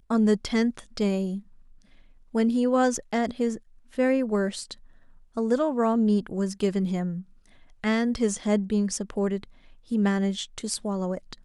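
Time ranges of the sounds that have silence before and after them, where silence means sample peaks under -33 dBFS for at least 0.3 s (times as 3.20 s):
2.35–3.57 s
3.98–4.73 s
5.37–7.21 s
7.84–9.44 s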